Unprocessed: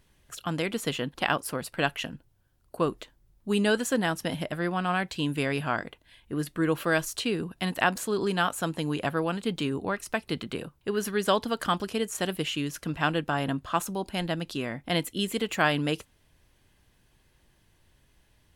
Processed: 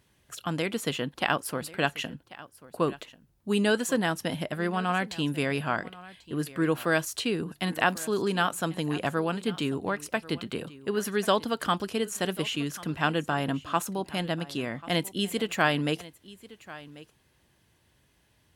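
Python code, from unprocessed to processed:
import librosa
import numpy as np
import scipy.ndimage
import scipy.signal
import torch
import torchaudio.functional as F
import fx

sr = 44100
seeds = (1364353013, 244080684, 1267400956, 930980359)

y = scipy.signal.sosfilt(scipy.signal.butter(2, 74.0, 'highpass', fs=sr, output='sos'), x)
y = y + 10.0 ** (-19.0 / 20.0) * np.pad(y, (int(1090 * sr / 1000.0), 0))[:len(y)]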